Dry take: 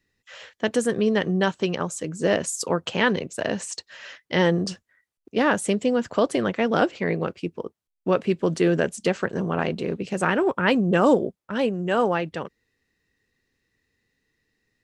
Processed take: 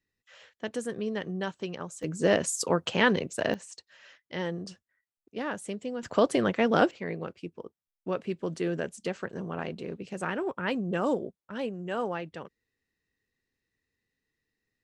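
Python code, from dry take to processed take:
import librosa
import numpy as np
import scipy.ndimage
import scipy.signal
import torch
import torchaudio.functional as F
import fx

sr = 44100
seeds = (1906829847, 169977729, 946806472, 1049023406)

y = fx.gain(x, sr, db=fx.steps((0.0, -11.0), (2.03, -2.0), (3.54, -13.0), (6.03, -2.0), (6.91, -10.0)))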